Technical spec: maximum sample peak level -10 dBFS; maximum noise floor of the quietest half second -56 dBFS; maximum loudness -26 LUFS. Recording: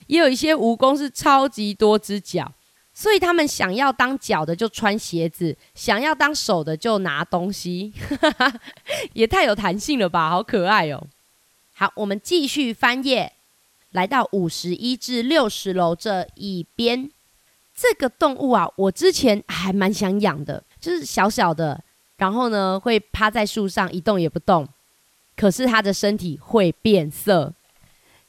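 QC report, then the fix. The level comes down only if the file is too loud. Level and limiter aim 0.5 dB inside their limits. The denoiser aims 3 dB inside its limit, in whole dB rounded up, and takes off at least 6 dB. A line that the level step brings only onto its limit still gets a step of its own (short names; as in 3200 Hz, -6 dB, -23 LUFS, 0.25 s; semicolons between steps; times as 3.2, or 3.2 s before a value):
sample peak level -4.0 dBFS: fail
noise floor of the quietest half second -61 dBFS: OK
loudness -20.5 LUFS: fail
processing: gain -6 dB; limiter -10.5 dBFS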